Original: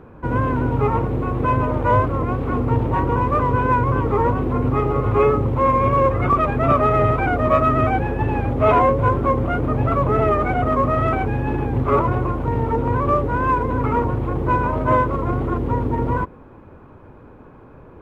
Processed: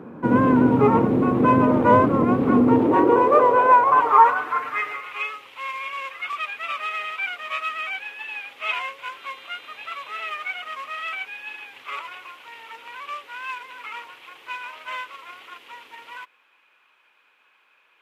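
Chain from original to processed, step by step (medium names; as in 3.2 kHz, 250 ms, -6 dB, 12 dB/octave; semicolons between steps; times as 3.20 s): 3.91–4.96 s: comb 6.7 ms, depth 100%; 9.19–10.28 s: mains buzz 400 Hz, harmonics 10, -47 dBFS -5 dB/octave; high-pass sweep 210 Hz -> 2.8 kHz, 2.53–5.24 s; trim +1.5 dB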